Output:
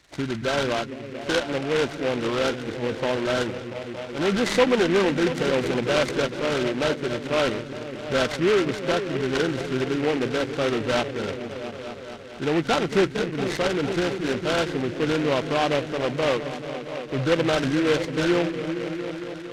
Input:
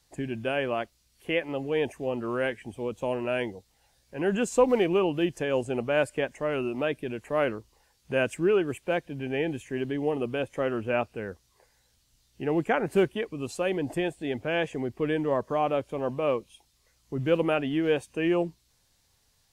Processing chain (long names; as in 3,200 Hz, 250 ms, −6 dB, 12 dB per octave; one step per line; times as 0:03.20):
hearing-aid frequency compression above 1,300 Hz 4 to 1
echo whose low-pass opens from repeat to repeat 228 ms, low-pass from 200 Hz, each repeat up 1 octave, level −6 dB
in parallel at −3 dB: brickwall limiter −21 dBFS, peak gain reduction 11.5 dB
on the sum: short delay modulated by noise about 1,800 Hz, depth 0.1 ms